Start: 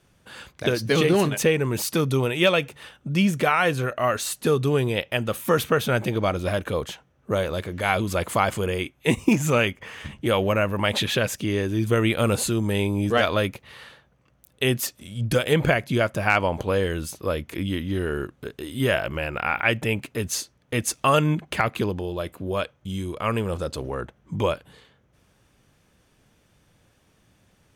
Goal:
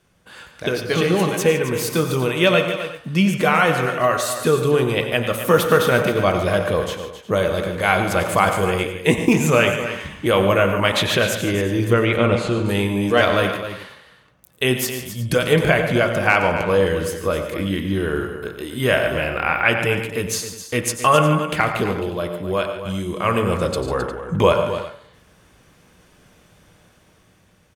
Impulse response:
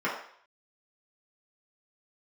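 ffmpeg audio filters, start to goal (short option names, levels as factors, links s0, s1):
-filter_complex "[0:a]asettb=1/sr,asplit=3[s0][s1][s2];[s0]atrim=end=11.934[s3];[s1]atrim=start=11.93:end=12.66,asetpts=PTS-STARTPTS,afade=t=in:d=0.004:c=qsin,afade=t=out:st=0.726:d=0.004:c=qsin,lowpass=3300[s4];[s2]atrim=start=12.656[s5];[s3][s4]acrossfade=d=0.004:c1=hsin:c2=qsin[s6];[s6][s5]acrossfade=d=0.004:c1=qsin:c2=hsin,aecho=1:1:92|109|144|162|264|359:0.2|0.211|0.2|0.112|0.266|0.119,asplit=2[s7][s8];[1:a]atrim=start_sample=2205[s9];[s8][s9]afir=irnorm=-1:irlink=0,volume=0.15[s10];[s7][s10]amix=inputs=2:normalize=0,dynaudnorm=f=330:g=11:m=5.62,volume=0.891"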